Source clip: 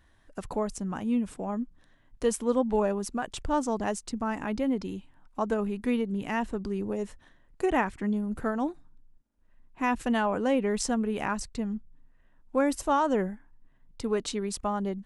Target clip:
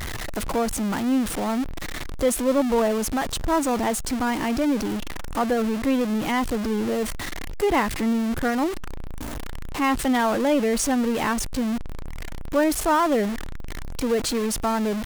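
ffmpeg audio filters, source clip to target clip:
ffmpeg -i in.wav -af "aeval=exprs='val(0)+0.5*0.0447*sgn(val(0))':channel_layout=same,asetrate=48091,aresample=44100,atempo=0.917004,volume=2.5dB" out.wav

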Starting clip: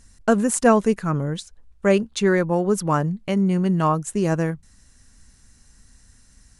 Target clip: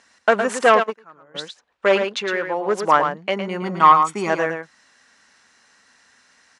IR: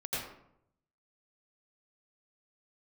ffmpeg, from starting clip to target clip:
-filter_complex "[0:a]asoftclip=type=hard:threshold=-12.5dB,asettb=1/sr,asplit=3[link_01][link_02][link_03];[link_01]atrim=end=2.014[link_04];[link_02]atrim=start=2.01:end=2.66,asetpts=PTS-STARTPTS,afade=type=in:duration=0.004:curve=qsin,afade=type=out:start_time=0.646:duration=0.004:curve=qsin,acompressor=threshold=-29dB:ratio=2[link_05];[link_03]atrim=start=2.656[link_06];[link_04][link_05]acrossfade=duration=0.004:curve1=hsin:curve2=qsin[link_07];[link_07][link_06]acrossfade=duration=0.004:curve1=qsin:curve2=hsin,asettb=1/sr,asplit=3[link_08][link_09][link_10];[link_08]atrim=end=3.624[link_11];[link_09]atrim=start=3.62:end=4.3,asetpts=PTS-STARTPTS,afade=type=in:duration=0.004:curve=qsin,afade=type=out:start_time=0.676:duration=0.004:curve=qsin,aecho=1:1:0.9:0.75,atrim=end_sample=29988[link_12];[link_10]atrim=start=4.296[link_13];[link_11][link_12]acrossfade=duration=0.004:curve1=hsin:curve2=qsin[link_14];[link_14][link_13]acrossfade=duration=0.004:curve1=qsin:curve2=hsin,asplit=2[link_15][link_16];[link_16]aecho=0:1:111:0.422[link_17];[link_15][link_17]amix=inputs=2:normalize=0,acontrast=74,asplit=3[link_18][link_19][link_20];[link_18]afade=type=out:start_time=0.82:duration=0.02[link_21];[link_19]agate=range=-25dB:threshold=-9dB:ratio=16:detection=peak,afade=type=in:start_time=0.82:duration=0.02,afade=type=out:start_time=1.34:duration=0.02[link_22];[link_20]afade=type=in:start_time=1.34:duration=0.02[link_23];[link_21][link_22][link_23]amix=inputs=3:normalize=0,highpass=640,lowpass=3300,volume=3dB"

